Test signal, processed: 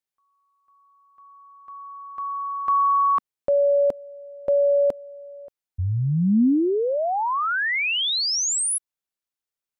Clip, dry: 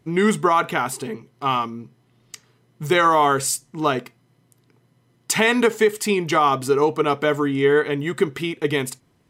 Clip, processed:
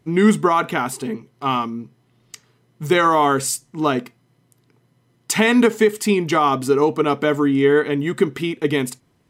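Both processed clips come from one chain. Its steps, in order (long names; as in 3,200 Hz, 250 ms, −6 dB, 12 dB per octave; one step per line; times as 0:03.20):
dynamic equaliser 240 Hz, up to +7 dB, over −37 dBFS, Q 1.6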